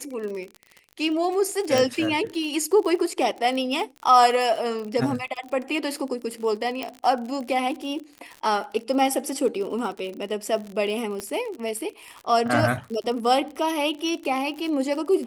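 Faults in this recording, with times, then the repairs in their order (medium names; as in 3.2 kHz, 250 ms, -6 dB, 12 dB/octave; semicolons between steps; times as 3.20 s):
crackle 49 per s -31 dBFS
1.78 s: pop
6.83 s: pop -15 dBFS
11.20 s: pop -17 dBFS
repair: de-click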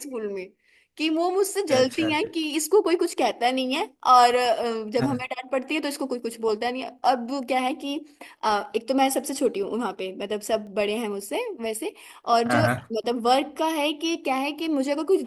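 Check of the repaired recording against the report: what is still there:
11.20 s: pop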